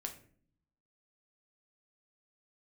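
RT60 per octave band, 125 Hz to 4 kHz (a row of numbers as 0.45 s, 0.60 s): 1.1 s, 0.95 s, 0.60 s, 0.40 s, 0.45 s, 0.30 s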